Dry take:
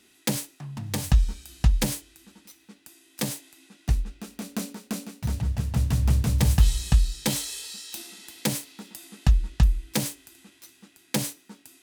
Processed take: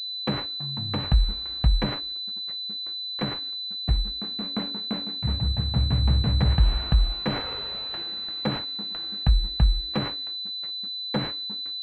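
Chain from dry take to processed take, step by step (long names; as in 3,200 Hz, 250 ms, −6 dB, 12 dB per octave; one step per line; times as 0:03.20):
noise gate −50 dBFS, range −43 dB
in parallel at −2.5 dB: brickwall limiter −15.5 dBFS, peak gain reduction 8.5 dB
on the sum: switching amplifier with a slow clock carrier 4,000 Hz
level −4 dB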